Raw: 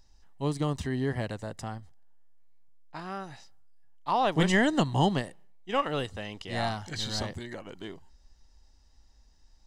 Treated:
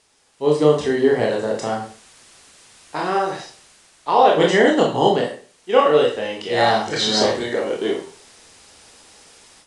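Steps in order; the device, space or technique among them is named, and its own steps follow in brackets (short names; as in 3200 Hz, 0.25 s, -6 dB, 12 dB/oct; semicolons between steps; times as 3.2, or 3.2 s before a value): filmed off a television (BPF 240–7900 Hz; bell 440 Hz +11.5 dB 0.56 oct; reverb RT60 0.40 s, pre-delay 21 ms, DRR -1.5 dB; white noise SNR 32 dB; AGC gain up to 13.5 dB; gain -1 dB; AAC 96 kbps 22050 Hz)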